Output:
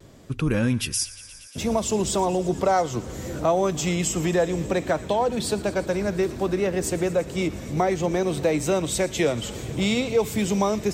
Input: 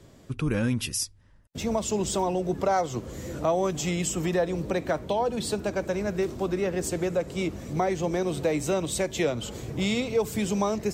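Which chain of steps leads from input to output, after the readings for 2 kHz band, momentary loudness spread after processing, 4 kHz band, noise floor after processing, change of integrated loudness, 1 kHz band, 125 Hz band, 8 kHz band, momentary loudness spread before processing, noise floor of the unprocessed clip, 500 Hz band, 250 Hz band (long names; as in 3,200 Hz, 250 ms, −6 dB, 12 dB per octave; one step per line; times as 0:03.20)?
+3.5 dB, 6 LU, +4.0 dB, −43 dBFS, +3.5 dB, +3.5 dB, +3.5 dB, +3.5 dB, 5 LU, −53 dBFS, +3.5 dB, +3.5 dB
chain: on a send: delay with a high-pass on its return 116 ms, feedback 85%, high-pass 1,600 Hz, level −17.5 dB
on the sum: pitch vibrato 0.63 Hz 25 cents
level +3.5 dB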